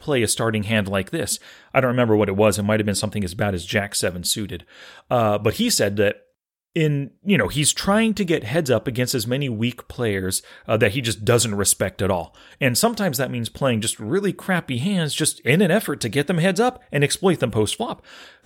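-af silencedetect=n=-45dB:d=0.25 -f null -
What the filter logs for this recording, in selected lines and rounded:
silence_start: 6.19
silence_end: 6.76 | silence_duration: 0.57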